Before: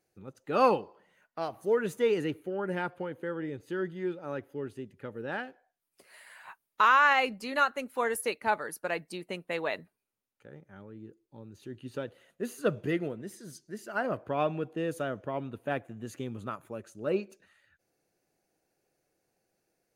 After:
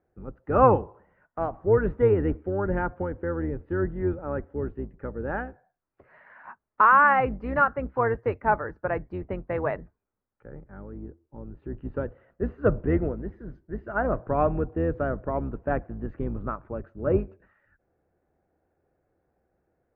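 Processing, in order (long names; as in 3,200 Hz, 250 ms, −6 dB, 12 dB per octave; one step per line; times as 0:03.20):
sub-octave generator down 2 octaves, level 0 dB
low-pass filter 1,600 Hz 24 dB per octave
level +5.5 dB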